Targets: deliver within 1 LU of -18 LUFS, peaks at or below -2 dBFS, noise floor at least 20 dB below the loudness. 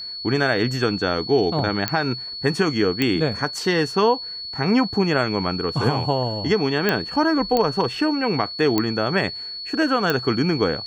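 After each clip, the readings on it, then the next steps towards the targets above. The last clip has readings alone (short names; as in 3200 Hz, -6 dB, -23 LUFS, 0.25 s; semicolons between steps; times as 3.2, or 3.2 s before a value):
clicks 6; steady tone 4400 Hz; tone level -30 dBFS; loudness -21.5 LUFS; peak -5.0 dBFS; loudness target -18.0 LUFS
-> de-click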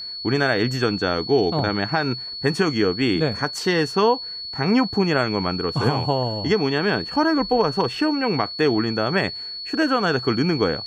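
clicks 0; steady tone 4400 Hz; tone level -30 dBFS
-> notch 4400 Hz, Q 30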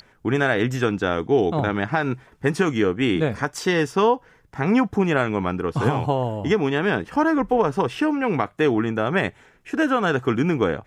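steady tone none; loudness -22.0 LUFS; peak -8.0 dBFS; loudness target -18.0 LUFS
-> gain +4 dB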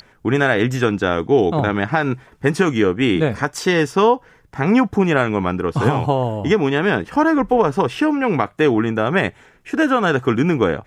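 loudness -18.0 LUFS; peak -4.0 dBFS; noise floor -52 dBFS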